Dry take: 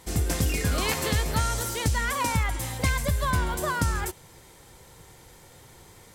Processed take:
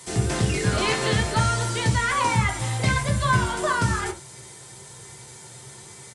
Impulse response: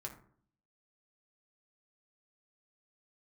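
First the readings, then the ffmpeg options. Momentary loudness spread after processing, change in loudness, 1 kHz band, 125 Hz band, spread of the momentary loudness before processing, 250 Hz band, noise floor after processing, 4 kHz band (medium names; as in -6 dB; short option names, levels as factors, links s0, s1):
20 LU, +3.5 dB, +5.5 dB, +4.5 dB, 2 LU, +4.0 dB, -44 dBFS, +4.0 dB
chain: -filter_complex "[0:a]acrossover=split=4200[s0][s1];[s1]acompressor=threshold=0.00562:ratio=4:attack=1:release=60[s2];[s0][s2]amix=inputs=2:normalize=0,highpass=f=84:w=0.5412,highpass=f=84:w=1.3066,aemphasis=mode=production:type=75kf,acrossover=split=170|3400[s3][s4][s5];[s5]aeval=exprs='clip(val(0),-1,0.0168)':c=same[s6];[s3][s4][s6]amix=inputs=3:normalize=0,aresample=22050,aresample=44100[s7];[1:a]atrim=start_sample=2205,atrim=end_sample=3969[s8];[s7][s8]afir=irnorm=-1:irlink=0,volume=2"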